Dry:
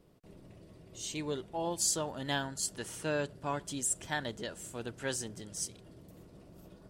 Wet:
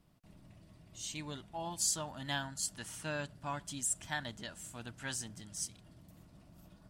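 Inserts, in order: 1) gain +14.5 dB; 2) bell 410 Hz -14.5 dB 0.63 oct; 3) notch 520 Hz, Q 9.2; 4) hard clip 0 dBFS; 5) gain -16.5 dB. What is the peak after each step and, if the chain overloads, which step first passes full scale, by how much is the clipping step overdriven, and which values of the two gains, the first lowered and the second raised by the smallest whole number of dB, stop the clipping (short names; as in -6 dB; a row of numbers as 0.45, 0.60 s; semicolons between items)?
-3.5, -3.5, -3.5, -3.5, -20.0 dBFS; no overload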